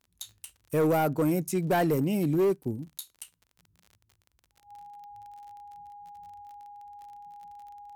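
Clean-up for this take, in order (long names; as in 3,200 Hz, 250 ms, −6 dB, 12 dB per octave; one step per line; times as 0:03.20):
clipped peaks rebuilt −20 dBFS
click removal
notch filter 820 Hz, Q 30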